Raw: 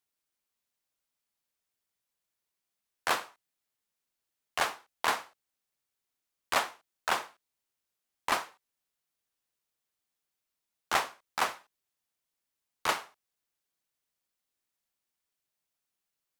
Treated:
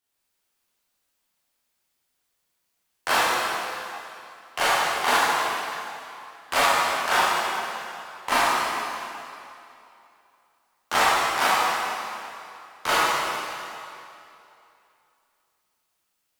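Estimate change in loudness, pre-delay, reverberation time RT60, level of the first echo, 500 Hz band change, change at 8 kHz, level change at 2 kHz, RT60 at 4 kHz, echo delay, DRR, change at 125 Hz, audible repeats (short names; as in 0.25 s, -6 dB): +9.0 dB, 18 ms, 2.8 s, none, +11.5 dB, +10.5 dB, +11.5 dB, 2.4 s, none, -10.5 dB, +10.0 dB, none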